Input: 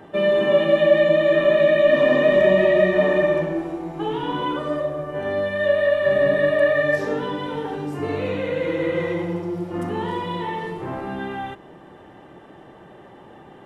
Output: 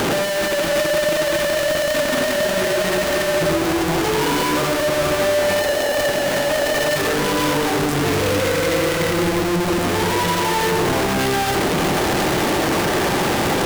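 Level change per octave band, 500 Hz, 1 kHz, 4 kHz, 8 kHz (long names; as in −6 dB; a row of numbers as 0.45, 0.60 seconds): −0.5 dB, +8.5 dB, +12.0 dB, can't be measured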